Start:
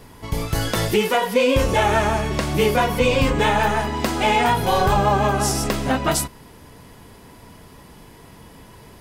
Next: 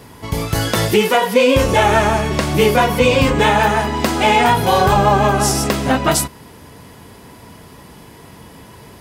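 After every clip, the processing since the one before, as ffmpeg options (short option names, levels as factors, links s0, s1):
-af "highpass=60,volume=1.78"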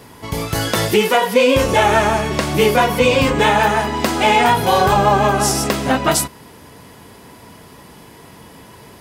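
-af "lowshelf=f=140:g=-5.5"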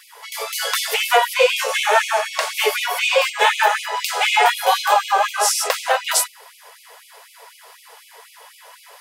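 -af "afftfilt=real='re*gte(b*sr/1024,400*pow(2200/400,0.5+0.5*sin(2*PI*4*pts/sr)))':imag='im*gte(b*sr/1024,400*pow(2200/400,0.5+0.5*sin(2*PI*4*pts/sr)))':win_size=1024:overlap=0.75,volume=1.12"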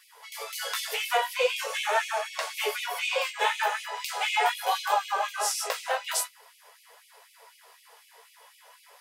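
-af "flanger=delay=9.9:depth=8.1:regen=-33:speed=0.43:shape=triangular,volume=0.473"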